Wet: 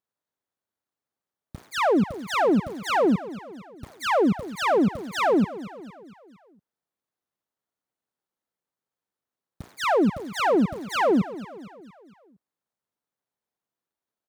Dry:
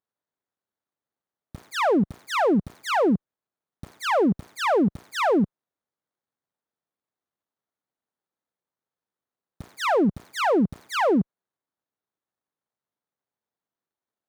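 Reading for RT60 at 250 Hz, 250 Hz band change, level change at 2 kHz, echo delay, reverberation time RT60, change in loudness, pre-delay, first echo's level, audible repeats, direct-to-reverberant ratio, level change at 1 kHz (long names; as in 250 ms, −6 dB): no reverb audible, 0.0 dB, 0.0 dB, 230 ms, no reverb audible, 0.0 dB, no reverb audible, −16.0 dB, 4, no reverb audible, 0.0 dB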